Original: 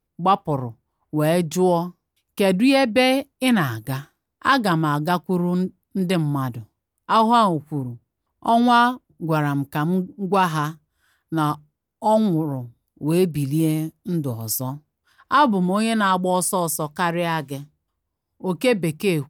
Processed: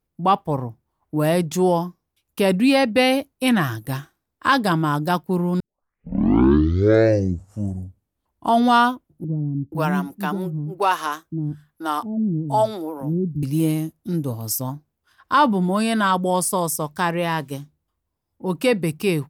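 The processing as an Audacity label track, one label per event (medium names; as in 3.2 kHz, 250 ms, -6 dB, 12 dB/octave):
5.600000	5.600000	tape start 2.90 s
9.240000	13.430000	bands offset in time lows, highs 480 ms, split 330 Hz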